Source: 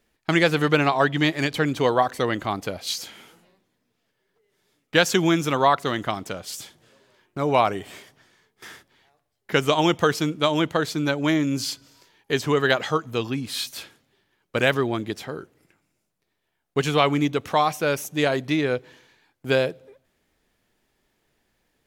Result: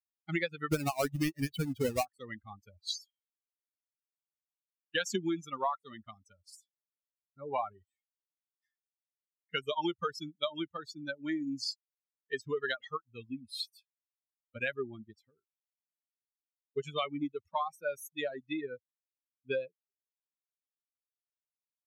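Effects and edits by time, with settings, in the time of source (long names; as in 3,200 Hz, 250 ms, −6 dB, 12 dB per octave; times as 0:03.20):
0:00.72–0:02.05: each half-wave held at its own peak
whole clip: spectral dynamics exaggerated over time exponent 3; downward compressor 4 to 1, threshold −30 dBFS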